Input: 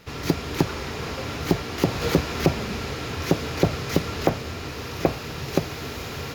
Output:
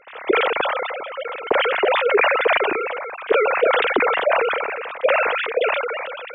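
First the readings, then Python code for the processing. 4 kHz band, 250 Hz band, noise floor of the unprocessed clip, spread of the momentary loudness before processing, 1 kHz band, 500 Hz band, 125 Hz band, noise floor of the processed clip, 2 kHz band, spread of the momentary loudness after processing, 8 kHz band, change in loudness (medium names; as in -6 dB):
+4.0 dB, -7.0 dB, -35 dBFS, 9 LU, +11.0 dB, +9.0 dB, under -25 dB, -35 dBFS, +12.5 dB, 11 LU, under -40 dB, +7.0 dB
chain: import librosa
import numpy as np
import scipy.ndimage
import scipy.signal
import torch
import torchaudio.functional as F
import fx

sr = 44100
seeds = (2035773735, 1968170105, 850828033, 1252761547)

y = fx.sine_speech(x, sr)
y = fx.sustainer(y, sr, db_per_s=26.0)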